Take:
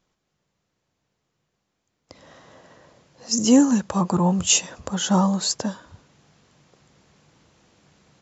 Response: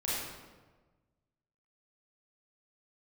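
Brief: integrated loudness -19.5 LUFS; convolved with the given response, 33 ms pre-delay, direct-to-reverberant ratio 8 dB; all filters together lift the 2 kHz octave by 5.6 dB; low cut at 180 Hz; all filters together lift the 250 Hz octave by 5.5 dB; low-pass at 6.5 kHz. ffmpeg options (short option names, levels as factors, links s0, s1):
-filter_complex "[0:a]highpass=180,lowpass=6500,equalizer=f=250:t=o:g=8,equalizer=f=2000:t=o:g=8.5,asplit=2[s0][s1];[1:a]atrim=start_sample=2205,adelay=33[s2];[s1][s2]afir=irnorm=-1:irlink=0,volume=0.2[s3];[s0][s3]amix=inputs=2:normalize=0,volume=0.668"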